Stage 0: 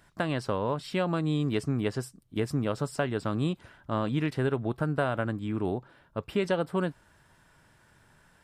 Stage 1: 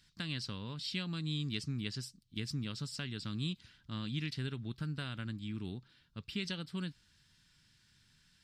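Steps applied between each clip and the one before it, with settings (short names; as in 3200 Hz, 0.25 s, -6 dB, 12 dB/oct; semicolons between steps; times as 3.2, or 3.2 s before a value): EQ curve 210 Hz 0 dB, 640 Hz -20 dB, 4500 Hz +14 dB, 9800 Hz -1 dB; gain -7.5 dB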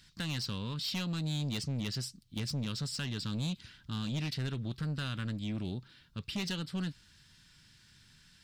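soft clip -37 dBFS, distortion -11 dB; gain +7 dB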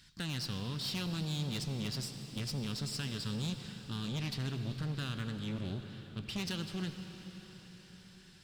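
one diode to ground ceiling -36.5 dBFS; reverb RT60 5.7 s, pre-delay 57 ms, DRR 7 dB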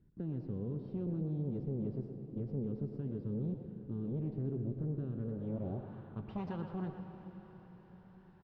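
speakerphone echo 0.12 s, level -7 dB; low-pass sweep 410 Hz -> 890 Hz, 5.15–5.94; gain -1.5 dB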